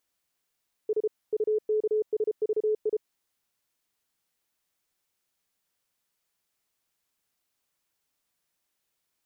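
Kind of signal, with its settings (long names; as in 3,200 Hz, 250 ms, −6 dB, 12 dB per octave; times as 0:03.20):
Morse code "S UKSVI" 33 words per minute 429 Hz −22 dBFS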